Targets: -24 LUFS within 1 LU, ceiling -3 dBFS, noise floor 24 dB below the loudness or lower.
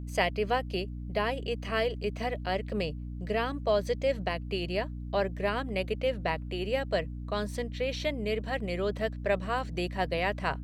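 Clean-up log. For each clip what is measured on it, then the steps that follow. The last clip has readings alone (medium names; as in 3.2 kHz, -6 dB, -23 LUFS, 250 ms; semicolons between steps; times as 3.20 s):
hum 60 Hz; highest harmonic 300 Hz; hum level -36 dBFS; loudness -31.5 LUFS; peak level -11.5 dBFS; loudness target -24.0 LUFS
-> hum notches 60/120/180/240/300 Hz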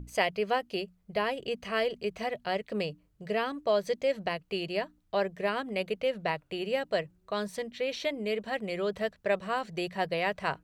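hum not found; loudness -32.0 LUFS; peak level -11.5 dBFS; loudness target -24.0 LUFS
-> trim +8 dB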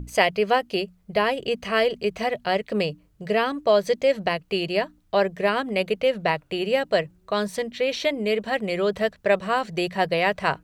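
loudness -24.0 LUFS; peak level -3.5 dBFS; noise floor -60 dBFS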